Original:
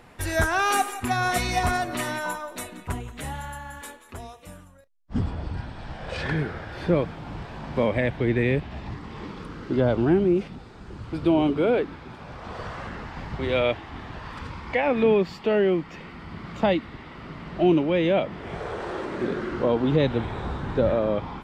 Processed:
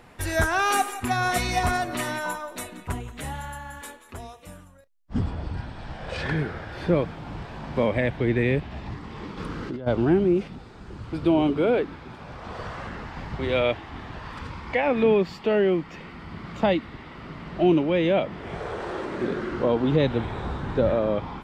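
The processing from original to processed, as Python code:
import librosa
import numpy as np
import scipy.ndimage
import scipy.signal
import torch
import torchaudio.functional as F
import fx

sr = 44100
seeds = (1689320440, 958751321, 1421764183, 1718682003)

y = fx.over_compress(x, sr, threshold_db=-30.0, ratio=-1.0, at=(9.37, 9.86), fade=0.02)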